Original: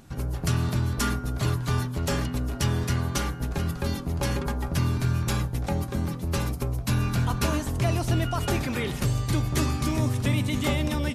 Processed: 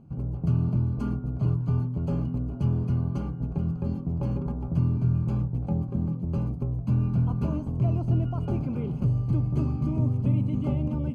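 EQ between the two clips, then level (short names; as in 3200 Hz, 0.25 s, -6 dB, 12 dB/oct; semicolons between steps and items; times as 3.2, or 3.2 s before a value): running mean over 24 samples; bell 160 Hz +11 dB 1.4 oct; -6.5 dB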